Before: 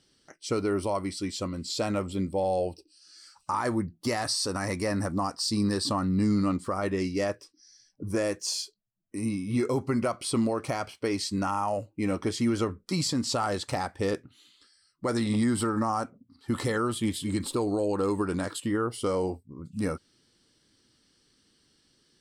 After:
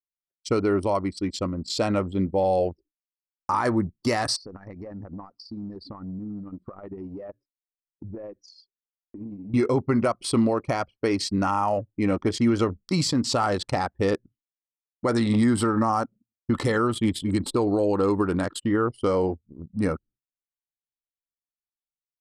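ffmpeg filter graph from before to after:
-filter_complex "[0:a]asettb=1/sr,asplit=3[a][b][c];[a]atrim=end=4.364[d];[b]atrim=start=4.36:end=9.54,asetpts=PTS-STARTPTS,afade=t=in:d=0.004:c=qsin,afade=t=out:st=5.176:d=0.004:c=qsin,lowpass=5.7k,acompressor=threshold=-37dB:ratio=6:attack=3.2:release=140:knee=1:detection=peak,bandreject=f=292.2:t=h:w=4,bandreject=f=584.4:t=h:w=4[e];[c]atrim=start=9.536[f];[d][e]acrossfade=d=0.004:c1=hsin:c2=qsin[g];[g][f]acrossfade=d=0.004:c1=qsin:c2=hsin,anlmdn=3.98,agate=range=-33dB:threshold=-50dB:ratio=3:detection=peak,highshelf=f=9.7k:g=-9.5,volume=5dB"

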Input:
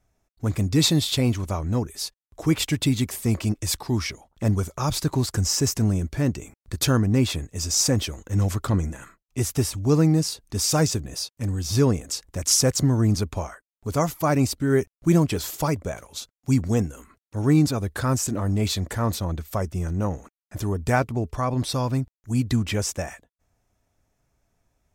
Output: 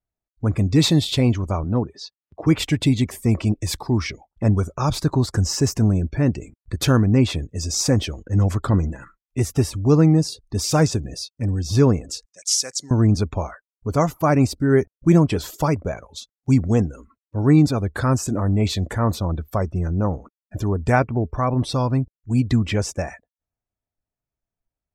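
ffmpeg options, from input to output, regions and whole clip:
-filter_complex "[0:a]asettb=1/sr,asplit=3[a][b][c];[a]atrim=end=1.644[d];[b]atrim=start=1.64:end=2.47,asetpts=PTS-STARTPTS,afade=t=in:d=0.004:c=qsin,afade=t=out:st=0.826:d=0.004:c=qsin,highshelf=f=4.3k:g=-3.5,acompressor=mode=upward:threshold=-38dB:ratio=2.5:attack=3.2:release=140:knee=2.83:detection=peak,highpass=100,lowpass=5.6k[e];[c]atrim=start=2.466[f];[d][e]acrossfade=d=0.004:c1=hsin:c2=qsin[g];[g][f]acrossfade=d=0.004:c1=qsin:c2=hsin,asettb=1/sr,asplit=3[h][i][j];[h]atrim=end=12.254[k];[i]atrim=start=12.25:end=12.91,asetpts=PTS-STARTPTS,afade=t=in:d=0.004:c=qsin,afade=t=out:st=0.656:d=0.004:c=qsin,aderivative,acontrast=39,highpass=120,lowpass=6.9k[l];[j]atrim=start=12.906[m];[k][l]acrossfade=d=0.004:c1=hsin:c2=qsin[n];[n][m]acrossfade=d=0.004:c1=qsin:c2=hsin,afftdn=nr=23:nf=-44,highshelf=f=4.9k:g=-9.5,volume=4dB"

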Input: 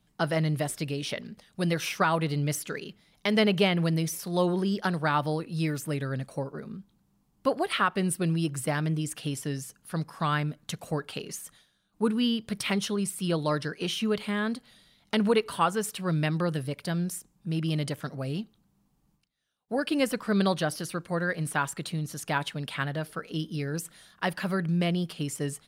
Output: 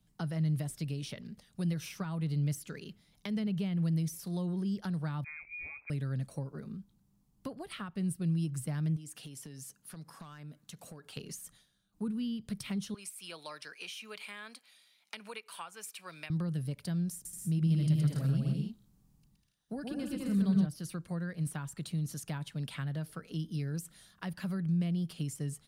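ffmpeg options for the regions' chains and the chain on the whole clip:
-filter_complex "[0:a]asettb=1/sr,asplit=3[a][b][c];[a]atrim=end=5.244[d];[b]atrim=start=5.24:end=5.9,asetpts=PTS-STARTPTS,afade=t=in:d=0.004:c=qsin,afade=t=out:st=0.656:d=0.004:c=qsin,aeval=exprs='clip(val(0),-1,0.0473)':c=same,lowpass=f=2.2k:t=q:w=0.5098,lowpass=f=2.2k:t=q:w=0.6013,lowpass=f=2.2k:t=q:w=0.9,lowpass=f=2.2k:t=q:w=2.563,afreqshift=-2600[e];[c]atrim=start=5.896[f];[d][e]acrossfade=d=0.004:c1=hsin:c2=qsin[g];[g][f]acrossfade=d=0.004:c1=qsin:c2=hsin,asettb=1/sr,asplit=3[h][i][j];[h]atrim=end=8.964[k];[i]atrim=start=8.96:end=11.17,asetpts=PTS-STARTPTS,afade=t=in:d=0.004:c=qsin,afade=t=out:st=2.206:d=0.004:c=qsin,highpass=f=190:p=1,acompressor=threshold=-39dB:ratio=10:attack=3.2:release=140:knee=1:detection=peak,volume=35.5dB,asoftclip=hard,volume=-35.5dB[l];[j]atrim=start=11.166[m];[k][l]acrossfade=d=0.004:c1=hsin:c2=qsin[n];[n][m]acrossfade=d=0.004:c1=qsin:c2=hsin,asettb=1/sr,asplit=3[o][p][q];[o]atrim=end=12.944[r];[p]atrim=start=12.94:end=16.3,asetpts=PTS-STARTPTS,afade=t=in:d=0.004:c=qsin,afade=t=out:st=3.356:d=0.004:c=qsin,highpass=790,equalizer=f=2.4k:t=o:w=0.21:g=11.5[s];[q]atrim=start=16.296[t];[r][s]acrossfade=d=0.004:c1=hsin:c2=qsin[u];[u][t]acrossfade=d=0.004:c1=qsin:c2=hsin,asettb=1/sr,asplit=3[v][w][x];[v]atrim=end=17.134[y];[w]atrim=start=17.13:end=20.66,asetpts=PTS-STARTPTS,afade=t=in:d=0.004:c=qsin,afade=t=out:st=3.526:d=0.004:c=qsin,bass=f=250:g=3,treble=f=4k:g=1,aecho=1:1:120|198|248.7|281.7|303.1:0.794|0.631|0.501|0.398|0.316,atrim=end_sample=155673[z];[x]atrim=start=20.656[aa];[y][z]acrossfade=d=0.004:c1=hsin:c2=qsin[ab];[ab][aa]acrossfade=d=0.004:c1=qsin:c2=hsin,bass=f=250:g=8,treble=f=4k:g=6,acrossover=split=210[ac][ad];[ad]acompressor=threshold=-33dB:ratio=10[ae];[ac][ae]amix=inputs=2:normalize=0,volume=-8dB"

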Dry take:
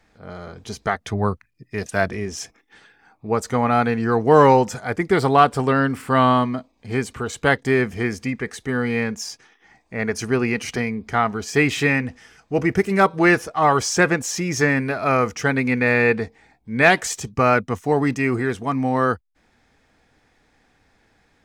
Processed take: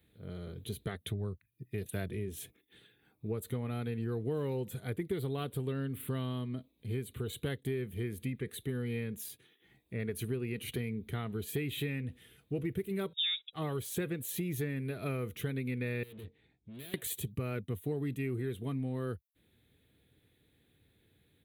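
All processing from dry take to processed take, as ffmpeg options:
-filter_complex "[0:a]asettb=1/sr,asplit=3[a][b][c];[a]atrim=end=13.134[d];[b]atrim=start=13.13:end=13.53,asetpts=PTS-STARTPTS,afade=t=in:d=0.004:c=qsin,afade=t=out:st=0.396:d=0.004:c=qsin,agate=range=-27dB:threshold=-31dB:ratio=16:release=100:detection=peak,lowpass=f=3.3k:t=q:w=0.5098,lowpass=f=3.3k:t=q:w=0.6013,lowpass=f=3.3k:t=q:w=0.9,lowpass=f=3.3k:t=q:w=2.563,afreqshift=-3900[e];[c]atrim=start=13.526[f];[d][e]acrossfade=d=0.004:c1=hsin:c2=qsin[g];[g][f]acrossfade=d=0.004:c1=qsin:c2=hsin,asettb=1/sr,asplit=3[h][i][j];[h]atrim=end=16.034[k];[i]atrim=start=16.03:end=16.94,asetpts=PTS-STARTPTS,afade=t=in:d=0.004:c=qsin,afade=t=out:st=0.906:d=0.004:c=qsin,lowpass=4.6k,acompressor=threshold=-20dB:ratio=5:attack=3.2:release=140:knee=1:detection=peak,aeval=exprs='(tanh(79.4*val(0)+0.75)-tanh(0.75))/79.4':c=same[l];[j]atrim=start=16.936[m];[k][l]acrossfade=d=0.004:c1=hsin:c2=qsin[n];[n][m]acrossfade=d=0.004:c1=qsin:c2=hsin,firequalizer=gain_entry='entry(120,0);entry(230,-9);entry(380,-5);entry(780,-23);entry(3700,-2);entry(5200,-29);entry(11000,7)':delay=0.05:min_phase=1,acompressor=threshold=-32dB:ratio=6,highpass=87"

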